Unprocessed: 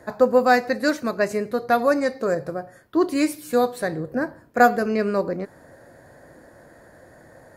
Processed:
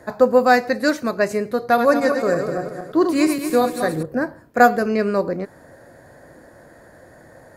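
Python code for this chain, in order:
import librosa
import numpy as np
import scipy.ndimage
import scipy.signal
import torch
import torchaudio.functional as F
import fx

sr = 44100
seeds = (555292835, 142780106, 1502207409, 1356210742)

y = fx.reverse_delay_fb(x, sr, ms=115, feedback_pct=63, wet_db=-6.0, at=(1.66, 4.03))
y = y * 10.0 ** (2.5 / 20.0)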